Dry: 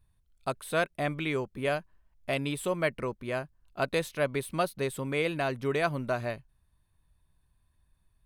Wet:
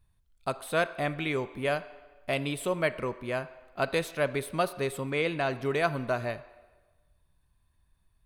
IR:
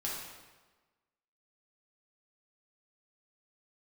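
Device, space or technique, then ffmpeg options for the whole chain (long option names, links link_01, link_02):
filtered reverb send: -filter_complex "[0:a]asplit=2[link_01][link_02];[link_02]highpass=340,lowpass=6400[link_03];[1:a]atrim=start_sample=2205[link_04];[link_03][link_04]afir=irnorm=-1:irlink=0,volume=-14dB[link_05];[link_01][link_05]amix=inputs=2:normalize=0,asettb=1/sr,asplit=3[link_06][link_07][link_08];[link_06]atrim=end=5.104[link_09];[link_07]atrim=start=5.1:end=5.51,asetpts=PTS-STARTPTS,afade=type=in:duration=0.004:curve=qsin,afade=type=out:start_time=0.406:duration=0.004:curve=qsin,lowpass=8300[link_10];[link_08]atrim=start=5.506[link_11];[link_09][link_10]acrossfade=duration=0.004:curve1=hsin:curve2=qsin[link_12];[link_12][link_11]acrossfade=duration=0.004:curve1=qsin:curve2=hsin"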